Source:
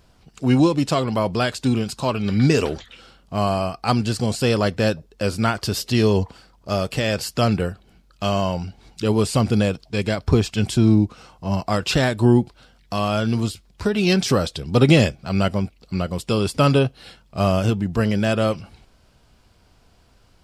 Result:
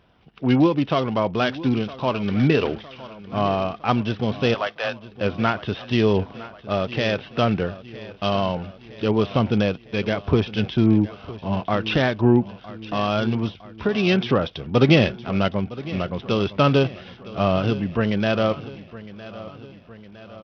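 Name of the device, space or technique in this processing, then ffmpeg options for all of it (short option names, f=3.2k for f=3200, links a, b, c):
Bluetooth headset: -filter_complex "[0:a]asettb=1/sr,asplit=3[a][b][c];[a]atrim=end=4.544[d];[b]atrim=start=4.54:end=5.08,asetpts=PTS-STARTPTS,afade=t=in:d=0.004:c=qsin,afade=t=out:st=0.536:d=0.004:c=qsin,highpass=f=630:w=0.5412,highpass=f=630:w=1.3066[e];[c]atrim=start=5.076[f];[d][e]acrossfade=d=0.004:c1=hsin:c2=qsin[g];[g][f]acrossfade=d=0.004:c1=qsin:c2=hsin,highpass=f=130:p=1,aecho=1:1:960|1920|2880|3840|4800:0.141|0.0791|0.0443|0.0248|0.0139,aresample=8000,aresample=44100" -ar 44100 -c:a sbc -b:a 64k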